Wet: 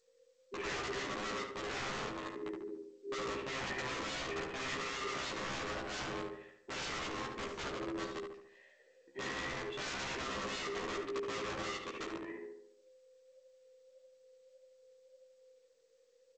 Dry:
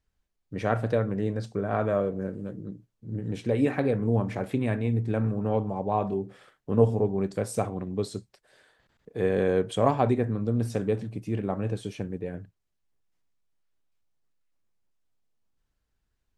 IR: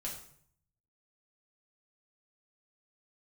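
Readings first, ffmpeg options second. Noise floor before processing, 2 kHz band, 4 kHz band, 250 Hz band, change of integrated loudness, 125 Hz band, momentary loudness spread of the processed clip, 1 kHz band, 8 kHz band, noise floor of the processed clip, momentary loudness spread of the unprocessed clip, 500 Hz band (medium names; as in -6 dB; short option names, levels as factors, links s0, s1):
-78 dBFS, +1.0 dB, +5.5 dB, -16.5 dB, -12.0 dB, -23.5 dB, 8 LU, -8.0 dB, +0.5 dB, -68 dBFS, 13 LU, -14.5 dB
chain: -filter_complex "[0:a]afftfilt=real='real(if(between(b,1,1008),(2*floor((b-1)/24)+1)*24-b,b),0)':imag='imag(if(between(b,1,1008),(2*floor((b-1)/24)+1)*24-b,b),0)*if(between(b,1,1008),-1,1)':win_size=2048:overlap=0.75,asplit=3[s0][s1][s2];[s0]bandpass=f=530:t=q:w=8,volume=1[s3];[s1]bandpass=f=1840:t=q:w=8,volume=0.501[s4];[s2]bandpass=f=2480:t=q:w=8,volume=0.355[s5];[s3][s4][s5]amix=inputs=3:normalize=0,flanger=delay=9.9:depth=4.6:regen=72:speed=1.7:shape=sinusoidal,highpass=240,acrossover=split=1700[s6][s7];[s6]aeval=exprs='(mod(266*val(0)+1,2)-1)/266':c=same[s8];[s8][s7]amix=inputs=2:normalize=0,asplit=2[s9][s10];[s10]adelay=15,volume=0.708[s11];[s9][s11]amix=inputs=2:normalize=0,asplit=2[s12][s13];[s13]adelay=72,lowpass=f=2000:p=1,volume=0.708,asplit=2[s14][s15];[s15]adelay=72,lowpass=f=2000:p=1,volume=0.52,asplit=2[s16][s17];[s17]adelay=72,lowpass=f=2000:p=1,volume=0.52,asplit=2[s18][s19];[s19]adelay=72,lowpass=f=2000:p=1,volume=0.52,asplit=2[s20][s21];[s21]adelay=72,lowpass=f=2000:p=1,volume=0.52,asplit=2[s22][s23];[s23]adelay=72,lowpass=f=2000:p=1,volume=0.52,asplit=2[s24][s25];[s25]adelay=72,lowpass=f=2000:p=1,volume=0.52[s26];[s14][s16][s18][s20][s22][s24][s26]amix=inputs=7:normalize=0[s27];[s12][s27]amix=inputs=2:normalize=0,volume=3.35" -ar 16000 -c:a g722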